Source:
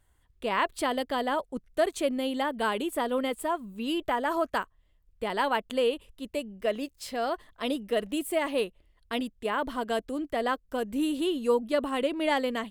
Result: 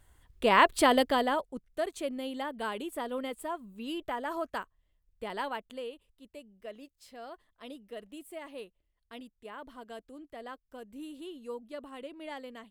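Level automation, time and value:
0:01.00 +5.5 dB
0:01.65 −7 dB
0:05.37 −7 dB
0:05.93 −15.5 dB

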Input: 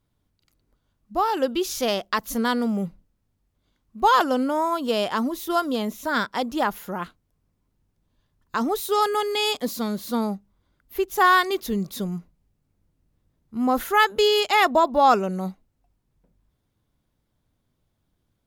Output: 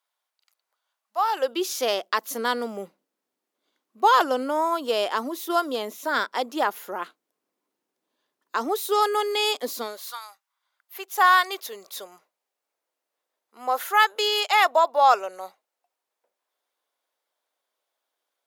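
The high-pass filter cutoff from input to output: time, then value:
high-pass filter 24 dB per octave
0:01.16 710 Hz
0:01.62 320 Hz
0:09.81 320 Hz
0:10.21 1,300 Hz
0:11.19 530 Hz

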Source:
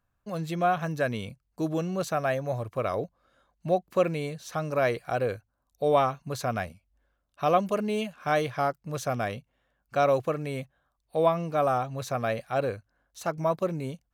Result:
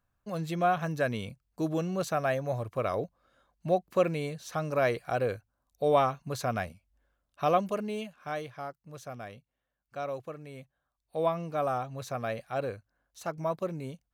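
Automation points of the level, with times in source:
0:07.44 −1.5 dB
0:08.60 −12.5 dB
0:10.52 −12.5 dB
0:11.26 −5 dB

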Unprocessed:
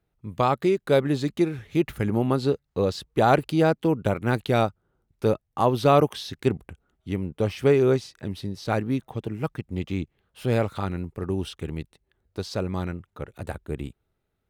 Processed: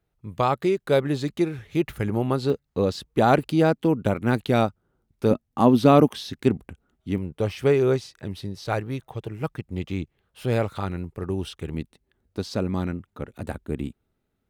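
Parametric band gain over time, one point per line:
parametric band 240 Hz 0.67 octaves
−2.5 dB
from 0:02.50 +4.5 dB
from 0:05.31 +13.5 dB
from 0:06.08 +6 dB
from 0:07.18 −3 dB
from 0:08.67 −9.5 dB
from 0:09.41 −1.5 dB
from 0:11.74 +8 dB

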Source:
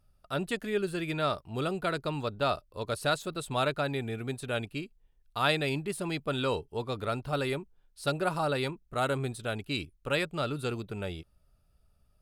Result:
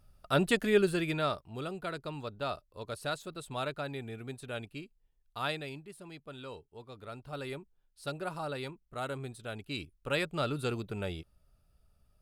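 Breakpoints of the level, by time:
0:00.79 +5 dB
0:01.59 −7 dB
0:05.44 −7 dB
0:05.88 −15 dB
0:06.88 −15 dB
0:07.53 −8 dB
0:09.38 −8 dB
0:10.39 −0.5 dB

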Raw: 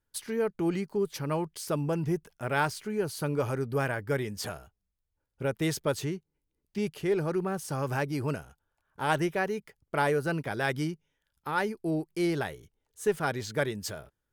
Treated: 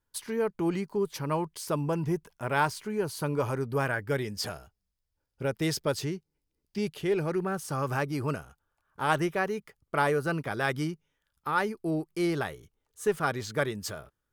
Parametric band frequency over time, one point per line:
parametric band +7 dB 0.29 octaves
0:03.83 1,000 Hz
0:04.25 5,000 Hz
0:06.78 5,000 Hz
0:07.63 1,200 Hz

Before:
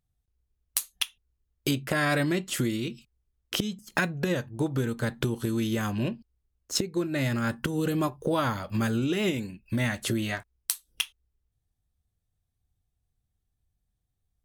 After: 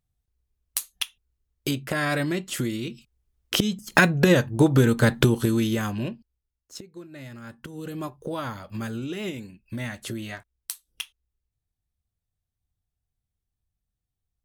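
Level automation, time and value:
0:02.85 0 dB
0:04.10 +10 dB
0:05.20 +10 dB
0:06.13 −2 dB
0:06.78 −13.5 dB
0:07.44 −13.5 dB
0:08.09 −5 dB

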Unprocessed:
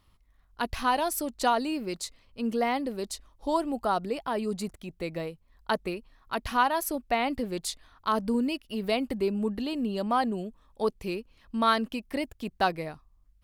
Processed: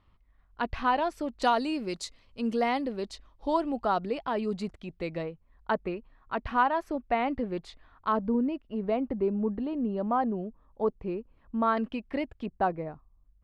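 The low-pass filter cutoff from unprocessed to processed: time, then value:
2,600 Hz
from 0:01.42 6,900 Hz
from 0:02.85 3,900 Hz
from 0:05.23 2,000 Hz
from 0:08.17 1,200 Hz
from 0:11.77 2,500 Hz
from 0:12.46 1,100 Hz

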